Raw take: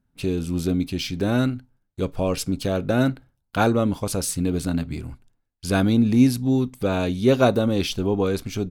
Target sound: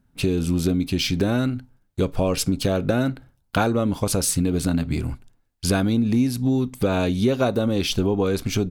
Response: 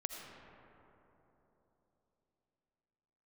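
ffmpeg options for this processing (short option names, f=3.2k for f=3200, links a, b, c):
-af "acompressor=threshold=-25dB:ratio=6,volume=7.5dB"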